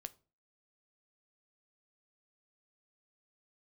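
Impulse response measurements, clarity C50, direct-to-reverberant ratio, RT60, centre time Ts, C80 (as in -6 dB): 21.5 dB, 11.0 dB, 0.35 s, 3 ms, 26.5 dB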